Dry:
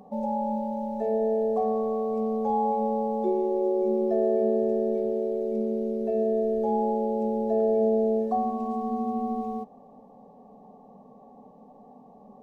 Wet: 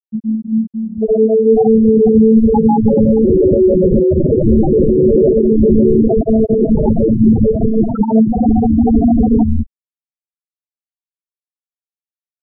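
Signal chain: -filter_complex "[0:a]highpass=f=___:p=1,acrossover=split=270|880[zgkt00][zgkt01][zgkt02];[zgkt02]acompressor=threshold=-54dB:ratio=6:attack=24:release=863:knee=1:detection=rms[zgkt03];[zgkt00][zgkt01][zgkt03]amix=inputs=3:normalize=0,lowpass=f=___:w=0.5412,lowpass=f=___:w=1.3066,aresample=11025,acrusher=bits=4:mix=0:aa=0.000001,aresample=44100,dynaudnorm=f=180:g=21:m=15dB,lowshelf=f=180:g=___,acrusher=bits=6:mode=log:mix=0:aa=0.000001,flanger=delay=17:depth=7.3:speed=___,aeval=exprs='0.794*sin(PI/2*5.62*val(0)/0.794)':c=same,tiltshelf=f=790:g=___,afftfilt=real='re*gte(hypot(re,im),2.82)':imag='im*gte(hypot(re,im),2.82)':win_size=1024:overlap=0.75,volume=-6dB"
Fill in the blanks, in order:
140, 1200, 1200, 5.5, 1.1, 7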